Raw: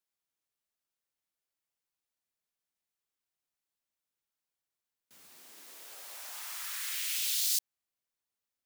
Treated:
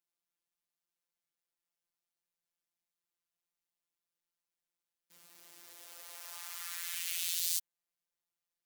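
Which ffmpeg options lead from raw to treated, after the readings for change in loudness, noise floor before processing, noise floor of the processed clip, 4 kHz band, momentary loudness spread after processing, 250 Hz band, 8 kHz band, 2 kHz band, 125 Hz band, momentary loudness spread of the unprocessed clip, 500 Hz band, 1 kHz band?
-3.5 dB, under -85 dBFS, under -85 dBFS, -4.5 dB, 20 LU, -2.5 dB, -4.0 dB, -3.5 dB, n/a, 20 LU, -3.0 dB, -3.0 dB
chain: -af "afftfilt=real='hypot(re,im)*cos(PI*b)':imag='0':win_size=1024:overlap=0.75,adynamicequalizer=threshold=0.00398:dfrequency=5000:dqfactor=2.7:tfrequency=5000:tqfactor=2.7:attack=5:release=100:ratio=0.375:range=1.5:mode=cutabove:tftype=bell,acrusher=bits=8:mode=log:mix=0:aa=0.000001"

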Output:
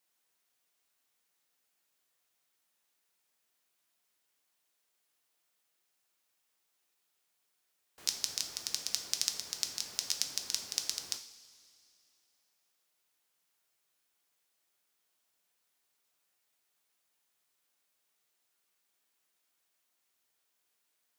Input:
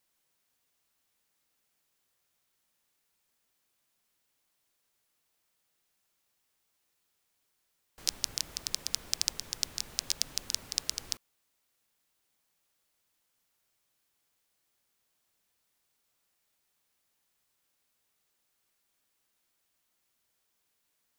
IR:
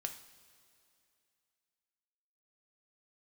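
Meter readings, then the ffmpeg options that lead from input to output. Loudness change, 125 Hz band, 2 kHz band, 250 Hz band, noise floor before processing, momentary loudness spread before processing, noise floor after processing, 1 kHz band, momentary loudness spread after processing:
-1.0 dB, -9.5 dB, -1.0 dB, -5.0 dB, -78 dBFS, 4 LU, -79 dBFS, -1.5 dB, 5 LU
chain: -filter_complex "[0:a]highpass=f=280:p=1[a];[1:a]atrim=start_sample=2205[b];[a][b]afir=irnorm=-1:irlink=0"

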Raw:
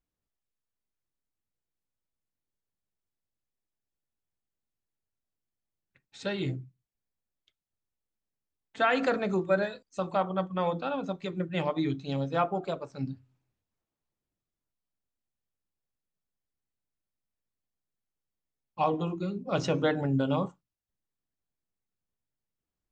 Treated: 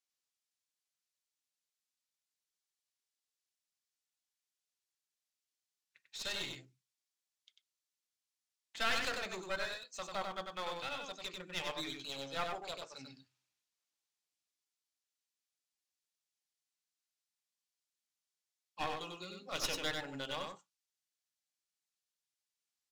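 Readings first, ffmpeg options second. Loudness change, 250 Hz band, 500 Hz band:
-9.5 dB, -19.0 dB, -14.0 dB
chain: -af "bandpass=f=5.5k:t=q:w=0.84:csg=0,aeval=exprs='clip(val(0),-1,0.00376)':c=same,aecho=1:1:95:0.596,volume=6dB"

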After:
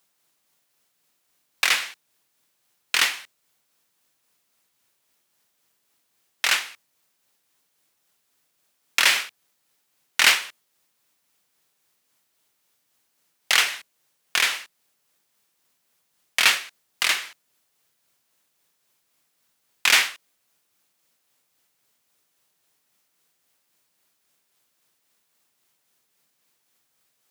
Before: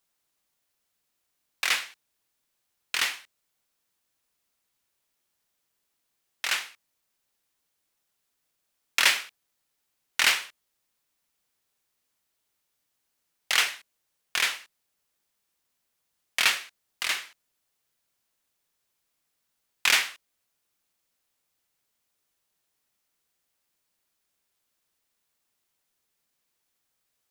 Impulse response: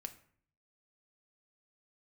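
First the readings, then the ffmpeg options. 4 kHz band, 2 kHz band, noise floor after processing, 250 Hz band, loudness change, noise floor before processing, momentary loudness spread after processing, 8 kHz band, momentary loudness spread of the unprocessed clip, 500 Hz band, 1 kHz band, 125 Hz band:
+5.0 dB, +5.0 dB, -72 dBFS, +5.0 dB, +4.5 dB, -79 dBFS, 18 LU, +5.0 dB, 18 LU, +5.0 dB, +5.0 dB, n/a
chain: -filter_complex "[0:a]tremolo=f=3.7:d=0.31,asplit=2[a][b];[b]alimiter=limit=-17dB:level=0:latency=1:release=213,volume=2dB[c];[a][c]amix=inputs=2:normalize=0,highpass=f=99:w=0.5412,highpass=f=99:w=1.3066,volume=2dB"

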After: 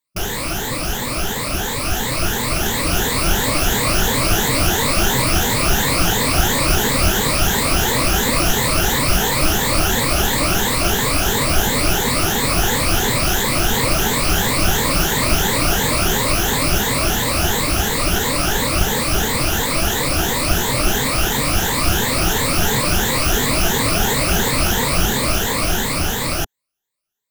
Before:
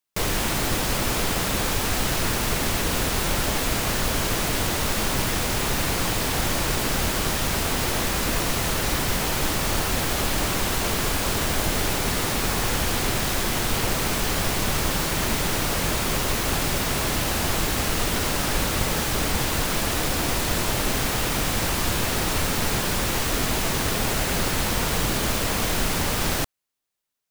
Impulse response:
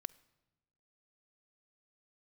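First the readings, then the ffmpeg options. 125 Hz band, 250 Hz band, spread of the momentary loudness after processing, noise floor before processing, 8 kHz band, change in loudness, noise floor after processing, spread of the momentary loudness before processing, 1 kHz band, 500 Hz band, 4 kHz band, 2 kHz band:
+6.0 dB, +6.0 dB, 4 LU, -25 dBFS, +6.5 dB, +6.5 dB, -23 dBFS, 0 LU, +6.5 dB, +6.5 dB, +6.5 dB, +6.5 dB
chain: -af "afftfilt=real='re*pow(10,14/40*sin(2*PI*(1*log(max(b,1)*sr/1024/100)/log(2)-(2.9)*(pts-256)/sr)))':imag='im*pow(10,14/40*sin(2*PI*(1*log(max(b,1)*sr/1024/100)/log(2)-(2.9)*(pts-256)/sr)))':win_size=1024:overlap=0.75,dynaudnorm=f=770:g=7:m=11.5dB,volume=-1dB"

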